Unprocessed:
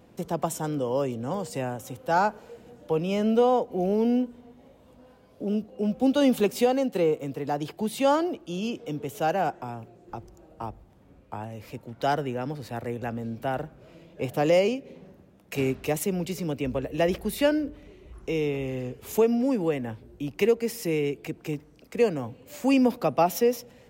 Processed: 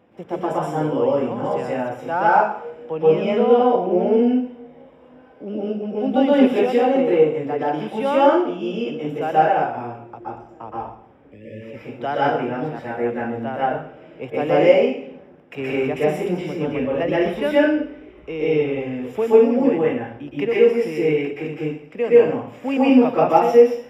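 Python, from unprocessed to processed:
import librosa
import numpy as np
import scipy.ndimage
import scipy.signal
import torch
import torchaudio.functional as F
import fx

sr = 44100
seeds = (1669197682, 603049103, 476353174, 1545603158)

y = fx.highpass(x, sr, hz=230.0, slope=6)
y = fx.spec_erase(y, sr, start_s=11.17, length_s=0.45, low_hz=610.0, high_hz=1700.0)
y = scipy.signal.savgol_filter(y, 25, 4, mode='constant')
y = fx.rev_plate(y, sr, seeds[0], rt60_s=0.6, hf_ratio=0.95, predelay_ms=110, drr_db=-7.5)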